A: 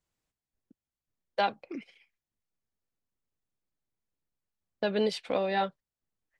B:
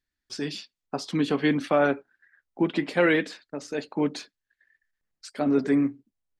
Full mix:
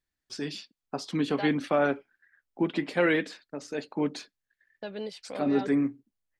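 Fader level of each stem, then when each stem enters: -9.0 dB, -3.0 dB; 0.00 s, 0.00 s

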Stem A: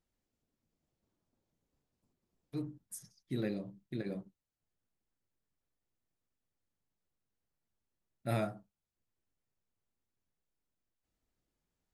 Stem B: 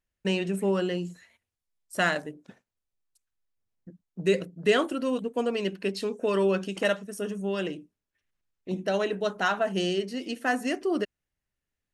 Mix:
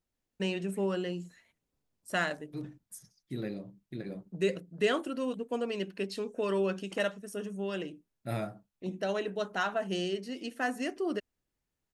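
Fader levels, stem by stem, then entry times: -1.0 dB, -5.5 dB; 0.00 s, 0.15 s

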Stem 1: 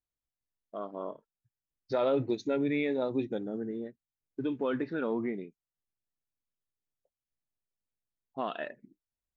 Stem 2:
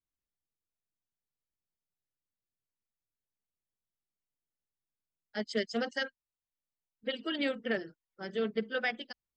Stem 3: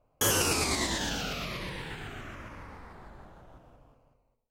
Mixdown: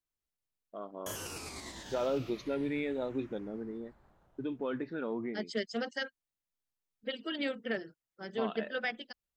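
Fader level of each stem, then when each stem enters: -4.5 dB, -2.5 dB, -15.5 dB; 0.00 s, 0.00 s, 0.85 s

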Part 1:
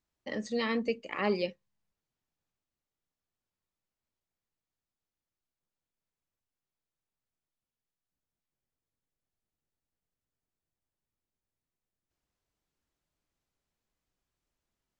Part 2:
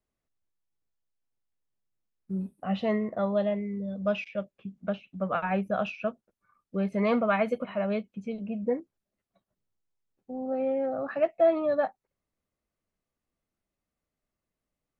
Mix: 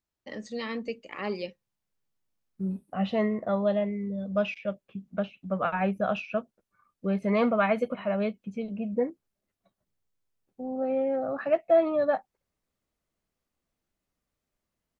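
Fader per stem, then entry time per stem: -3.0 dB, +1.0 dB; 0.00 s, 0.30 s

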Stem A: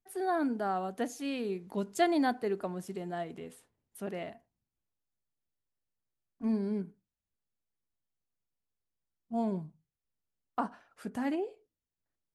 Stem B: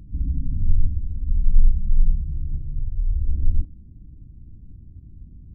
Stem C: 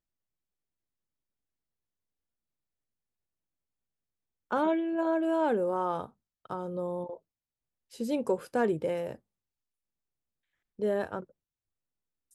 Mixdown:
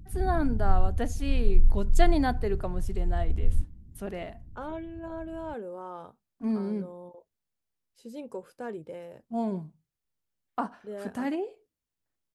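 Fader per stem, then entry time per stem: +2.0 dB, -5.0 dB, -10.0 dB; 0.00 s, 0.00 s, 0.05 s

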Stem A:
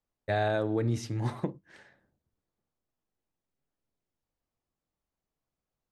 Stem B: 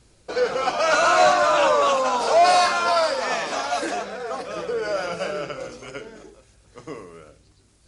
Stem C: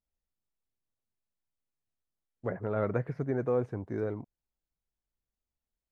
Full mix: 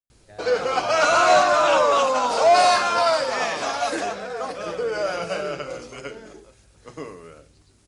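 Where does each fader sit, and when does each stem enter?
-18.5 dB, +0.5 dB, -19.0 dB; 0.00 s, 0.10 s, 0.00 s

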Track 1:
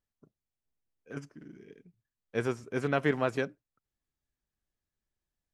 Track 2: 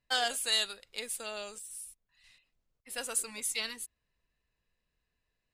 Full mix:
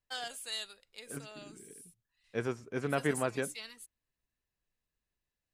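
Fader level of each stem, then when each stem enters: -3.5 dB, -10.0 dB; 0.00 s, 0.00 s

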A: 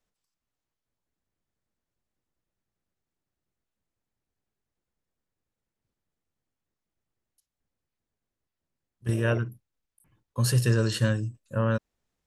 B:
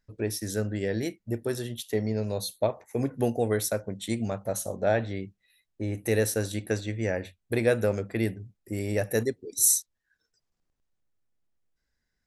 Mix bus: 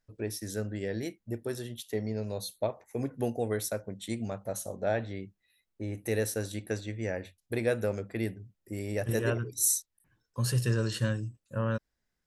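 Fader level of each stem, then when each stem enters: -5.0 dB, -5.0 dB; 0.00 s, 0.00 s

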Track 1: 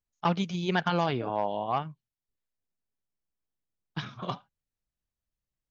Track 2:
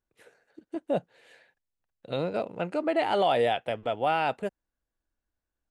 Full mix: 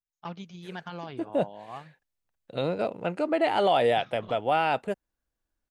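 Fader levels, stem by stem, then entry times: -12.0 dB, +1.5 dB; 0.00 s, 0.45 s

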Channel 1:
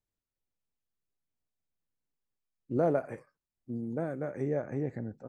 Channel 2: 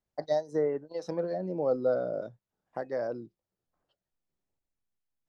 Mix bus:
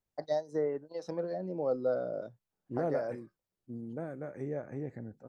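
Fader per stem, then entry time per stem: -5.5 dB, -3.5 dB; 0.00 s, 0.00 s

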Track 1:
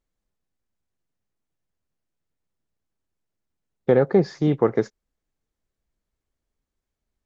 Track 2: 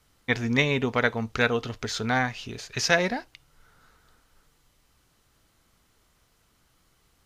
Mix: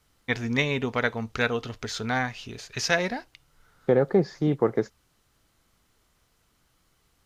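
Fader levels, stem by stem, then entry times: -3.5 dB, -2.0 dB; 0.00 s, 0.00 s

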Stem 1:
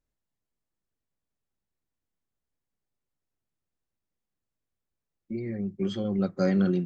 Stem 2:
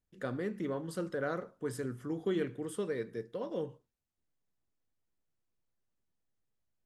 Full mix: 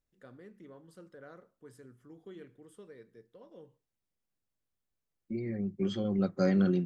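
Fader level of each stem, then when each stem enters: -2.5 dB, -16.0 dB; 0.00 s, 0.00 s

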